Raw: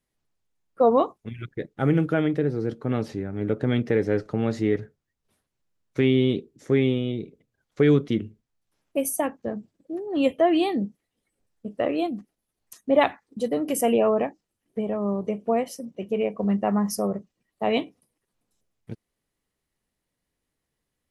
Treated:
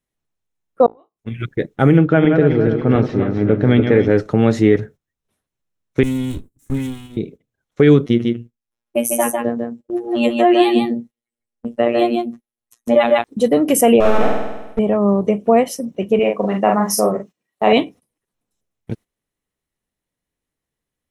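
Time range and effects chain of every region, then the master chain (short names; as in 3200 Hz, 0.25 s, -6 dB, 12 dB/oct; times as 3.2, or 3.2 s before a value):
0.86–1.4 flipped gate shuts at -19 dBFS, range -39 dB + resonator 56 Hz, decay 0.21 s, mix 70%
1.97–4.11 regenerating reverse delay 0.141 s, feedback 62%, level -6.5 dB + air absorption 190 m
6.03–7.17 minimum comb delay 2.4 ms + EQ curve 260 Hz 0 dB, 390 Hz -20 dB, 700 Hz -19 dB, 1100 Hz -14 dB, 1900 Hz -13 dB, 5500 Hz -9 dB, 8300 Hz +6 dB
8.06–13.24 gate -47 dBFS, range -9 dB + robotiser 118 Hz + echo 0.149 s -4.5 dB
14–14.79 half-wave gain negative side -12 dB + flutter echo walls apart 8.5 m, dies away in 1.1 s
16.19–17.73 HPF 340 Hz 6 dB/oct + doubler 42 ms -3 dB
whole clip: gate -46 dBFS, range -13 dB; notch 4700 Hz, Q 9.1; maximiser +12 dB; gain -1 dB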